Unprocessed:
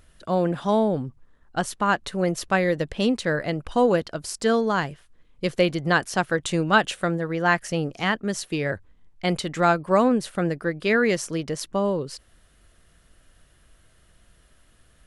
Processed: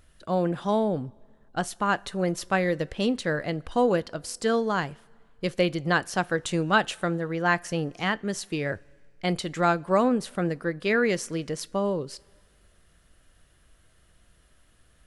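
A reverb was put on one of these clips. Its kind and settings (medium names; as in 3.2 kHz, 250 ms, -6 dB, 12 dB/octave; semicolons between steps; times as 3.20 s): two-slope reverb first 0.24 s, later 1.9 s, from -18 dB, DRR 18.5 dB; trim -3 dB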